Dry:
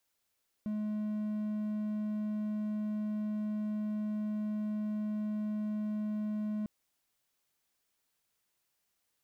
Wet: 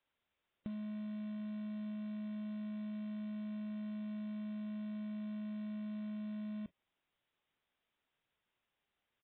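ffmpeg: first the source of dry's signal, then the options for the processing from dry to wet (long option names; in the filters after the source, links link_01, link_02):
-f lavfi -i "aevalsrc='0.0316*(1-4*abs(mod(212*t+0.25,1)-0.5))':duration=6:sample_rate=44100"
-af "acompressor=threshold=-39dB:ratio=16,aresample=8000,acrusher=bits=6:mode=log:mix=0:aa=0.000001,aresample=44100" -ar 11025 -c:a libmp3lame -b:a 16k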